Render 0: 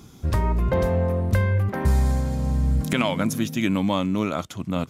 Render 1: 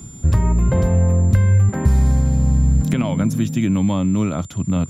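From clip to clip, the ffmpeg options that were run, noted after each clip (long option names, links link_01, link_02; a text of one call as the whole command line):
ffmpeg -i in.wav -filter_complex "[0:a]aeval=exprs='val(0)+0.0141*sin(2*PI*7200*n/s)':channel_layout=same,bass=frequency=250:gain=12,treble=frequency=4000:gain=-3,acrossover=split=92|970[link_01][link_02][link_03];[link_01]acompressor=threshold=-19dB:ratio=4[link_04];[link_02]acompressor=threshold=-15dB:ratio=4[link_05];[link_03]acompressor=threshold=-32dB:ratio=4[link_06];[link_04][link_05][link_06]amix=inputs=3:normalize=0" out.wav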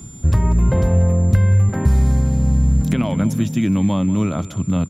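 ffmpeg -i in.wav -af "aecho=1:1:189|378|567:0.158|0.0618|0.0241" out.wav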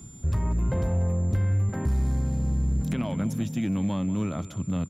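ffmpeg -i in.wav -af "asoftclip=type=tanh:threshold=-10dB,volume=-8dB" out.wav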